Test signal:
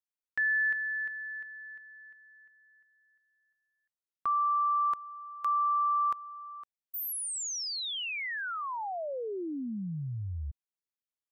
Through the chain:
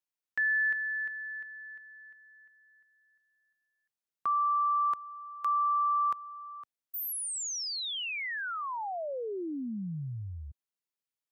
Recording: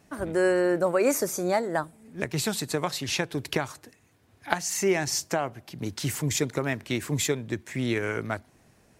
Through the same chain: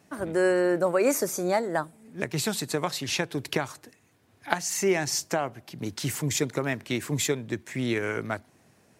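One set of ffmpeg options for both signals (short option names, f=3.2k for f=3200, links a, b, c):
-af "highpass=99"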